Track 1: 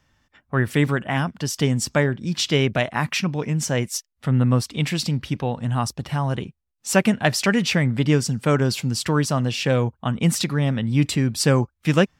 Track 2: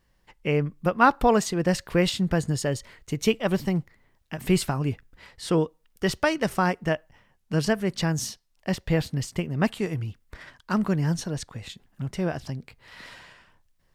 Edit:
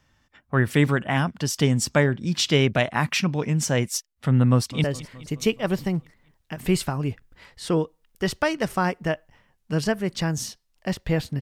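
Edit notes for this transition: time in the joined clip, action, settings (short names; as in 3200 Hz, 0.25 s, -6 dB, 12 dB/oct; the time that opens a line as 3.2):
track 1
4.5–4.84 echo throw 0.21 s, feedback 65%, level -17.5 dB
4.84 switch to track 2 from 2.65 s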